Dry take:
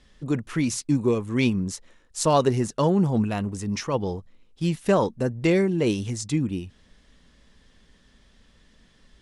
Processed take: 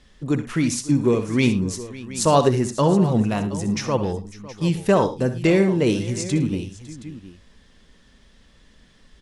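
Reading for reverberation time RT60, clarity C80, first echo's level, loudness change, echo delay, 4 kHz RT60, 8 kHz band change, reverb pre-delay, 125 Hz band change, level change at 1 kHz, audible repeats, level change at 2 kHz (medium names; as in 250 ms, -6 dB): no reverb, no reverb, -12.5 dB, +3.5 dB, 63 ms, no reverb, +3.5 dB, no reverb, +3.5 dB, +3.5 dB, 4, +3.5 dB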